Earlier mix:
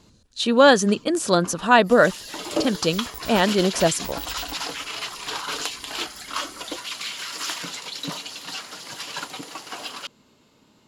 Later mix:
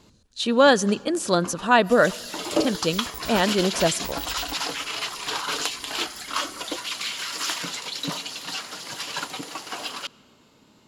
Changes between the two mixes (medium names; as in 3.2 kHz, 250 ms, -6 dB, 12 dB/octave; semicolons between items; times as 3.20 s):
speech -3.5 dB; reverb: on, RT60 1.8 s